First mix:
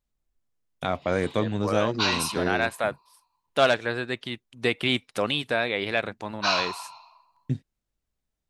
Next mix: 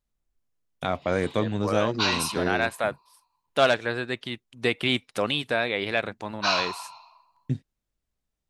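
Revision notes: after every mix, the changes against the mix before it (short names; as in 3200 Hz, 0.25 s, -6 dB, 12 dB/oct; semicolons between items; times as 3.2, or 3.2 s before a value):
none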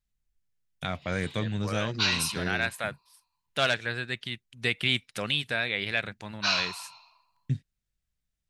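master: add band shelf 540 Hz -9 dB 2.6 oct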